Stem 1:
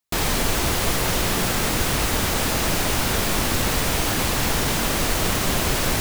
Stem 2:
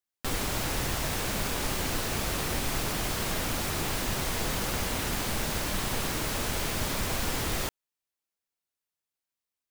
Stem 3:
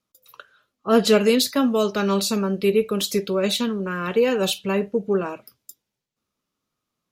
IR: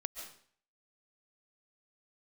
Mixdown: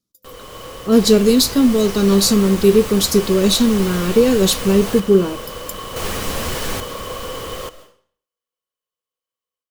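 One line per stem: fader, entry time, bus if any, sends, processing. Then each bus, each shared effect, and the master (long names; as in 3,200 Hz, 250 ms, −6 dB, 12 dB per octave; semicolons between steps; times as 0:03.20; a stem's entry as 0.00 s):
−11.5 dB, 0.80 s, muted 0:05.00–0:05.96, no send, string-ensemble chorus
−17.0 dB, 0.00 s, send −4.5 dB, hollow resonant body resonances 500/1,100/3,000 Hz, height 17 dB, ringing for 40 ms
+2.0 dB, 0.00 s, no send, flat-topped bell 1,300 Hz −12.5 dB 2.8 octaves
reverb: on, RT60 0.50 s, pre-delay 100 ms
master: automatic gain control gain up to 11 dB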